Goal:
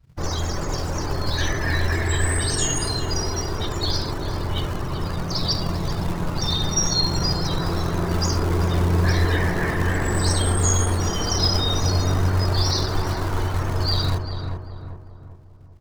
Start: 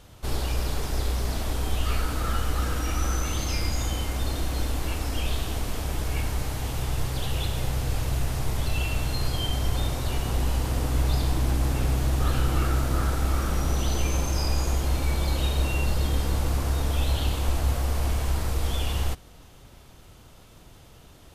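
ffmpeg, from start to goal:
ffmpeg -i in.wav -filter_complex "[0:a]afftdn=noise_reduction=34:noise_floor=-36,equalizer=frequency=100:width_type=o:width=0.67:gain=3,equalizer=frequency=250:width_type=o:width=0.67:gain=7,equalizer=frequency=4000:width_type=o:width=0.67:gain=8,acrossover=split=160|550|6600[link_01][link_02][link_03][link_04];[link_01]acrusher=bits=3:mode=log:mix=0:aa=0.000001[link_05];[link_03]acontrast=71[link_06];[link_05][link_02][link_06][link_04]amix=inputs=4:normalize=0,asplit=2[link_07][link_08];[link_08]adelay=529,lowpass=frequency=1200:poles=1,volume=-5.5dB,asplit=2[link_09][link_10];[link_10]adelay=529,lowpass=frequency=1200:poles=1,volume=0.47,asplit=2[link_11][link_12];[link_12]adelay=529,lowpass=frequency=1200:poles=1,volume=0.47,asplit=2[link_13][link_14];[link_14]adelay=529,lowpass=frequency=1200:poles=1,volume=0.47,asplit=2[link_15][link_16];[link_16]adelay=529,lowpass=frequency=1200:poles=1,volume=0.47,asplit=2[link_17][link_18];[link_18]adelay=529,lowpass=frequency=1200:poles=1,volume=0.47[link_19];[link_07][link_09][link_11][link_13][link_15][link_17][link_19]amix=inputs=7:normalize=0,asetrate=59535,aresample=44100,adynamicequalizer=threshold=0.0112:dfrequency=3900:dqfactor=0.7:tfrequency=3900:tqfactor=0.7:attack=5:release=100:ratio=0.375:range=2:mode=boostabove:tftype=highshelf" out.wav

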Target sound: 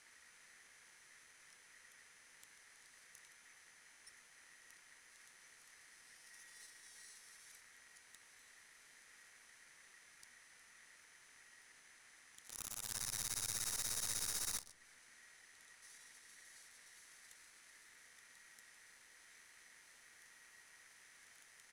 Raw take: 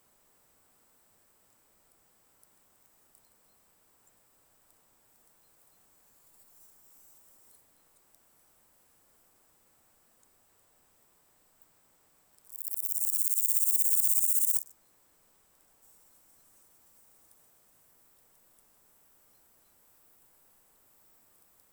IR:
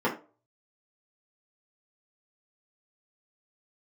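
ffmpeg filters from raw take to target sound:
-filter_complex "[0:a]lowpass=frequency=7300:width=0.5412,lowpass=frequency=7300:width=1.3066,equalizer=frequency=1200:width_type=o:width=2.7:gain=-13.5,acompressor=threshold=-56dB:ratio=2.5,aeval=exprs='val(0)*sin(2*PI*1900*n/s)':channel_layout=same,aeval=exprs='0.00891*(cos(1*acos(clip(val(0)/0.00891,-1,1)))-cos(1*PI/2))+0.002*(cos(4*acos(clip(val(0)/0.00891,-1,1)))-cos(4*PI/2))':channel_layout=same,asplit=2[link_01][link_02];[link_02]adelay=129,lowpass=frequency=2000:poles=1,volume=-19.5dB,asplit=2[link_03][link_04];[link_04]adelay=129,lowpass=frequency=2000:poles=1,volume=0.49,asplit=2[link_05][link_06];[link_06]adelay=129,lowpass=frequency=2000:poles=1,volume=0.49,asplit=2[link_07][link_08];[link_08]adelay=129,lowpass=frequency=2000:poles=1,volume=0.49[link_09];[link_01][link_03][link_05][link_07][link_09]amix=inputs=5:normalize=0,asplit=2[link_10][link_11];[1:a]atrim=start_sample=2205[link_12];[link_11][link_12]afir=irnorm=-1:irlink=0,volume=-26.5dB[link_13];[link_10][link_13]amix=inputs=2:normalize=0,volume=14.5dB"

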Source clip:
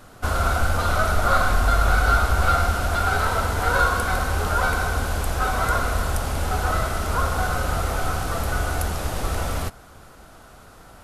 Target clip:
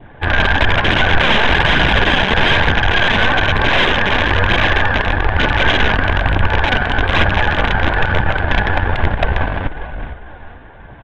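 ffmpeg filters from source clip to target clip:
ffmpeg -i in.wav -filter_complex "[0:a]adynamicequalizer=threshold=0.0178:dfrequency=1300:dqfactor=2.2:tfrequency=1300:tqfactor=2.2:attack=5:release=100:ratio=0.375:range=2.5:mode=boostabove:tftype=bell,aeval=exprs='0.631*(cos(1*acos(clip(val(0)/0.631,-1,1)))-cos(1*PI/2))+0.141*(cos(5*acos(clip(val(0)/0.631,-1,1)))-cos(5*PI/2))':channel_layout=same,asplit=5[link_01][link_02][link_03][link_04][link_05];[link_02]adelay=443,afreqshift=-38,volume=-8.5dB[link_06];[link_03]adelay=886,afreqshift=-76,volume=-18.4dB[link_07];[link_04]adelay=1329,afreqshift=-114,volume=-28.3dB[link_08];[link_05]adelay=1772,afreqshift=-152,volume=-38.2dB[link_09];[link_01][link_06][link_07][link_08][link_09]amix=inputs=5:normalize=0,asetrate=50951,aresample=44100,atempo=0.865537,aresample=8000,aeval=exprs='(mod(2.66*val(0)+1,2)-1)/2.66':channel_layout=same,aresample=44100,bandreject=frequency=1300:width=5.1,aeval=exprs='0.794*(cos(1*acos(clip(val(0)/0.794,-1,1)))-cos(1*PI/2))+0.141*(cos(3*acos(clip(val(0)/0.794,-1,1)))-cos(3*PI/2))+0.0501*(cos(6*acos(clip(val(0)/0.794,-1,1)))-cos(6*PI/2))':channel_layout=same,aphaser=in_gain=1:out_gain=1:delay=5:decay=0.29:speed=1.1:type=triangular,lowpass=2700,alimiter=level_in=8dB:limit=-1dB:release=50:level=0:latency=1,volume=-1dB" out.wav

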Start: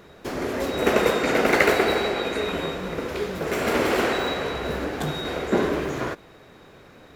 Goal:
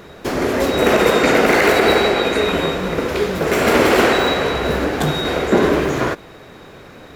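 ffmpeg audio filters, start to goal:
ffmpeg -i in.wav -af "alimiter=level_in=11.5dB:limit=-1dB:release=50:level=0:latency=1,volume=-2.5dB" out.wav

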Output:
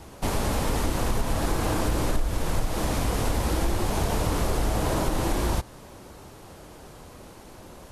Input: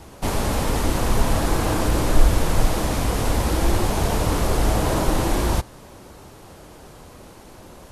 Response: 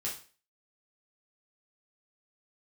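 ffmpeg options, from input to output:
-af "acompressor=threshold=-18dB:ratio=6,volume=-2dB"

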